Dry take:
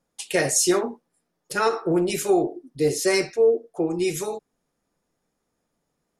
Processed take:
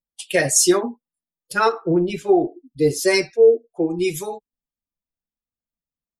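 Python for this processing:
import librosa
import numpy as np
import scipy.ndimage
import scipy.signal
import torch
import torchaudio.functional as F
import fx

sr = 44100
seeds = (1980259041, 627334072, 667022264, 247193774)

y = fx.bin_expand(x, sr, power=1.5)
y = fx.spacing_loss(y, sr, db_at_10k=20, at=(1.72, 2.41))
y = y * librosa.db_to_amplitude(6.0)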